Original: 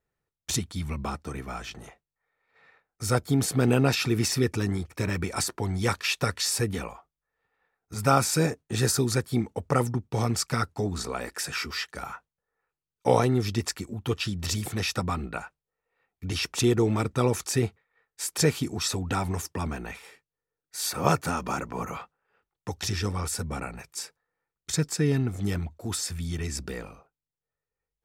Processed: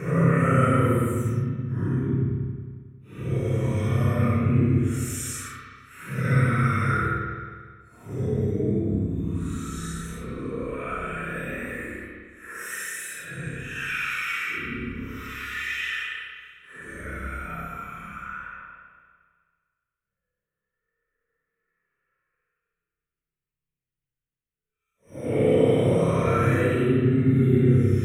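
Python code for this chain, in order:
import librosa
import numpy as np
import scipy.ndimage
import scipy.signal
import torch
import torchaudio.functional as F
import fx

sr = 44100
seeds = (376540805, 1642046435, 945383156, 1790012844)

y = fx.fixed_phaser(x, sr, hz=2000.0, stages=4)
y = fx.paulstretch(y, sr, seeds[0], factor=7.5, window_s=0.05, from_s=9.7)
y = fx.rev_spring(y, sr, rt60_s=1.7, pass_ms=(30, 54), chirp_ms=45, drr_db=-5.0)
y = y * 10.0 ** (-1.5 / 20.0)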